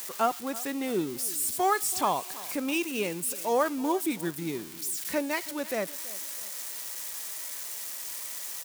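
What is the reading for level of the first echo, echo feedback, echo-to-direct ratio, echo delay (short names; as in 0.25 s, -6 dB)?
-19.0 dB, 37%, -18.5 dB, 0.328 s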